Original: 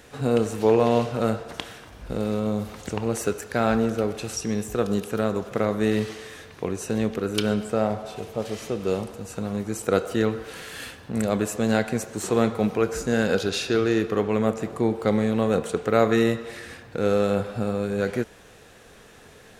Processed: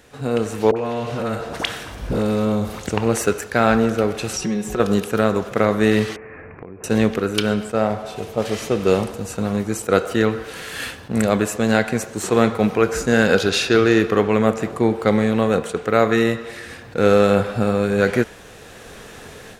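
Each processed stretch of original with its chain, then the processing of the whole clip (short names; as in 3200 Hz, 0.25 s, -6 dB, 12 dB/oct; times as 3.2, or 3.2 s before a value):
0.71–2.81 compressor 3:1, threshold -25 dBFS + dispersion highs, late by 55 ms, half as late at 900 Hz
4.33–4.8 high shelf 8600 Hz -9 dB + comb 5.4 ms, depth 94% + compressor 2.5:1, threshold -29 dBFS
6.16–6.84 steep low-pass 2500 Hz 96 dB/oct + bell 1900 Hz -3 dB 1.6 oct + compressor 8:1, threshold -40 dBFS
whole clip: dynamic EQ 1800 Hz, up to +4 dB, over -39 dBFS, Q 0.75; AGC; attack slew limiter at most 510 dB/s; gain -1 dB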